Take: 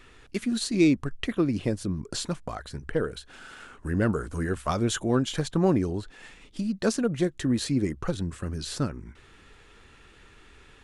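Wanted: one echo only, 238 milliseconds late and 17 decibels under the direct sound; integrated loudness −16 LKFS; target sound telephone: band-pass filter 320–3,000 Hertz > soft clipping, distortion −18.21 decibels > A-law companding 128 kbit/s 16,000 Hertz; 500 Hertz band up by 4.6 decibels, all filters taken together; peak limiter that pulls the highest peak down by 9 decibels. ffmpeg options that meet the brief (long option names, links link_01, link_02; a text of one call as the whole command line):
ffmpeg -i in.wav -af "equalizer=frequency=500:width_type=o:gain=7.5,alimiter=limit=-17dB:level=0:latency=1,highpass=320,lowpass=3000,aecho=1:1:238:0.141,asoftclip=threshold=-21dB,volume=17.5dB" -ar 16000 -c:a pcm_alaw out.wav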